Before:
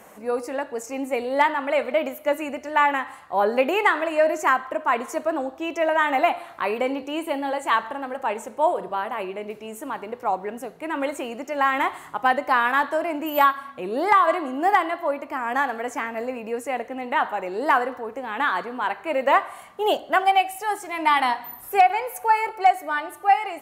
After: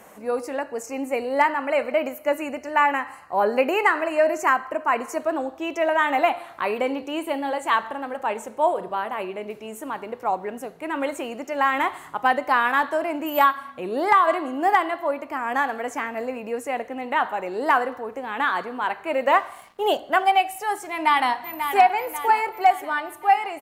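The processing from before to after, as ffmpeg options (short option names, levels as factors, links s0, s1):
-filter_complex "[0:a]asettb=1/sr,asplit=3[s0][s1][s2];[s0]atrim=end=0.594[s3];[s1]atrim=start=0.59:end=5.2,asetpts=PTS-STARTPTS,afade=t=in:d=0.004:c=qsin,afade=t=out:st=4.606:d=0.004:c=qsin,asuperstop=centerf=3500:order=4:qfactor=3.8[s4];[s2]atrim=start=5.196[s5];[s3][s4]acrossfade=d=0.004:c1=hsin:c2=qsin[s6];[s6][s5]acrossfade=d=0.004:c1=qsin:c2=hsin,asettb=1/sr,asplit=3[s7][s8][s9];[s7]atrim=end=19.284[s10];[s8]atrim=start=19.28:end=19.9,asetpts=PTS-STARTPTS,afade=t=in:d=0.004:c=qsin,afade=t=out:st=0.616:d=0.004:c=qsin,aeval=exprs='sgn(val(0))*max(abs(val(0))-0.00224,0)':c=same[s11];[s9]atrim=start=19.896[s12];[s10][s11]acrossfade=d=0.004:c1=hsin:c2=qsin[s13];[s13][s12]acrossfade=d=0.004:c1=qsin:c2=hsin,asplit=2[s14][s15];[s15]afade=t=in:st=20.89:d=0.01,afade=t=out:st=21.76:d=0.01,aecho=0:1:540|1080|1620|2160|2700|3240:0.398107|0.199054|0.0995268|0.0497634|0.0248817|0.0124408[s16];[s14][s16]amix=inputs=2:normalize=0"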